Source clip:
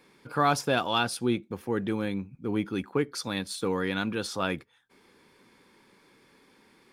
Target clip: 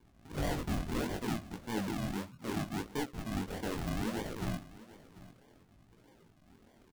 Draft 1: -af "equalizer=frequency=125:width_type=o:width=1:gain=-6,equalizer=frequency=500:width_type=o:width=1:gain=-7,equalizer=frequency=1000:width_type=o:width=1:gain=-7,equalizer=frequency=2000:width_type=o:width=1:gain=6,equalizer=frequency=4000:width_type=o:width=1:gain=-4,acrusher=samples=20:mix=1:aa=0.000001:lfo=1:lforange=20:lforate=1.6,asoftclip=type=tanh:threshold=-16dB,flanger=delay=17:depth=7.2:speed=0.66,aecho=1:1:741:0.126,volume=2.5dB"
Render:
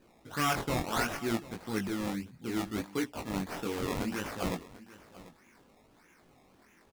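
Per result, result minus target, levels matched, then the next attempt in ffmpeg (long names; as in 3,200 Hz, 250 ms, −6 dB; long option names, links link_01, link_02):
soft clipping: distortion −14 dB; sample-and-hold swept by an LFO: distortion −13 dB
-af "equalizer=frequency=125:width_type=o:width=1:gain=-6,equalizer=frequency=500:width_type=o:width=1:gain=-7,equalizer=frequency=1000:width_type=o:width=1:gain=-7,equalizer=frequency=2000:width_type=o:width=1:gain=6,equalizer=frequency=4000:width_type=o:width=1:gain=-4,acrusher=samples=20:mix=1:aa=0.000001:lfo=1:lforange=20:lforate=1.6,asoftclip=type=tanh:threshold=-27.5dB,flanger=delay=17:depth=7.2:speed=0.66,aecho=1:1:741:0.126,volume=2.5dB"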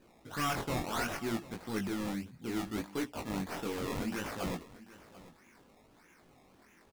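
sample-and-hold swept by an LFO: distortion −13 dB
-af "equalizer=frequency=125:width_type=o:width=1:gain=-6,equalizer=frequency=500:width_type=o:width=1:gain=-7,equalizer=frequency=1000:width_type=o:width=1:gain=-7,equalizer=frequency=2000:width_type=o:width=1:gain=6,equalizer=frequency=4000:width_type=o:width=1:gain=-4,acrusher=samples=66:mix=1:aa=0.000001:lfo=1:lforange=66:lforate=1.6,asoftclip=type=tanh:threshold=-27.5dB,flanger=delay=17:depth=7.2:speed=0.66,aecho=1:1:741:0.126,volume=2.5dB"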